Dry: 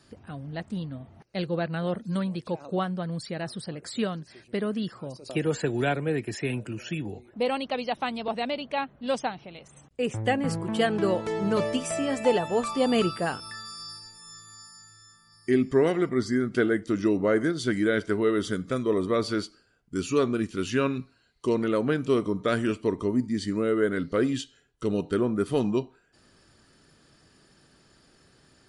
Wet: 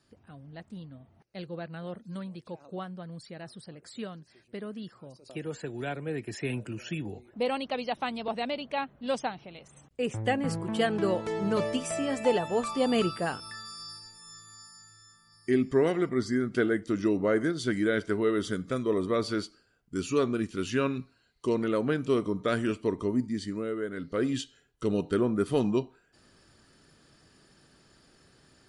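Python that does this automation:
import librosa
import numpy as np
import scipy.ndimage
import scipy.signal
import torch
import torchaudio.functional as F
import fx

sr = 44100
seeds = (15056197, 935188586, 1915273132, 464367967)

y = fx.gain(x, sr, db=fx.line((5.75, -10.0), (6.52, -2.5), (23.22, -2.5), (23.88, -10.0), (24.38, -1.0)))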